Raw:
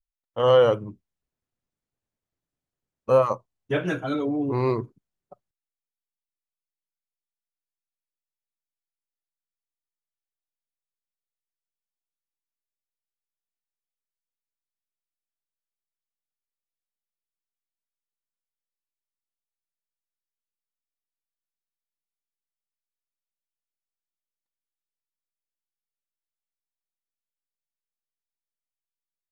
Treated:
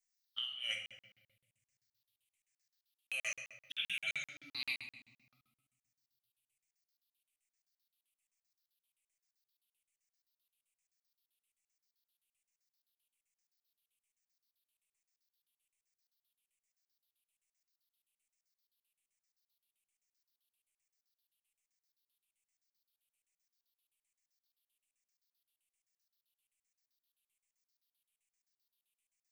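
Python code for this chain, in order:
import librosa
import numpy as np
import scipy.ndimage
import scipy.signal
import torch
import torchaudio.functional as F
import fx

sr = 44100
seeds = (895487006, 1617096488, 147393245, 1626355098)

y = fx.spec_ripple(x, sr, per_octave=0.53, drift_hz=-1.2, depth_db=18)
y = scipy.signal.sosfilt(scipy.signal.cheby2(4, 40, 1100.0, 'highpass', fs=sr, output='sos'), y)
y = fx.over_compress(y, sr, threshold_db=-41.0, ratio=-1.0)
y = fx.room_shoebox(y, sr, seeds[0], volume_m3=680.0, walls='mixed', distance_m=1.2)
y = fx.buffer_crackle(y, sr, first_s=0.86, period_s=0.13, block=2048, kind='zero')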